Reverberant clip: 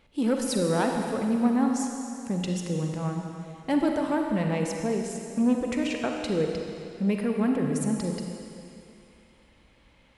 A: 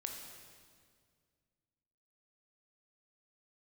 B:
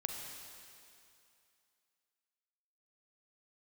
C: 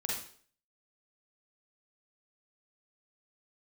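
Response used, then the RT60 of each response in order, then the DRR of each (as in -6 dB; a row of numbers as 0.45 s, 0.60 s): B; 2.0 s, 2.6 s, 0.50 s; 1.5 dB, 2.0 dB, -3.5 dB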